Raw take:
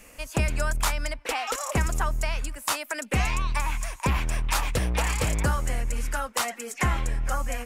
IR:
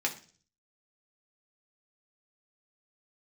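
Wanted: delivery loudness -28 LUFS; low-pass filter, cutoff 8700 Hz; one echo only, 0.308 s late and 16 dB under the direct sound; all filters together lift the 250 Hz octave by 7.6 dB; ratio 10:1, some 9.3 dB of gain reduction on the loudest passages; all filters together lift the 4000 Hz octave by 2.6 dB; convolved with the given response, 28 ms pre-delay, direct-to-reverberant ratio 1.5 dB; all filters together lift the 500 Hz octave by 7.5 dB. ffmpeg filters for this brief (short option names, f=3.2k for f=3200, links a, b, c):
-filter_complex "[0:a]lowpass=8.7k,equalizer=f=250:t=o:g=8.5,equalizer=f=500:t=o:g=7,equalizer=f=4k:t=o:g=3.5,acompressor=threshold=-26dB:ratio=10,aecho=1:1:308:0.158,asplit=2[a][b];[1:a]atrim=start_sample=2205,adelay=28[c];[b][c]afir=irnorm=-1:irlink=0,volume=-8dB[d];[a][d]amix=inputs=2:normalize=0,volume=2.5dB"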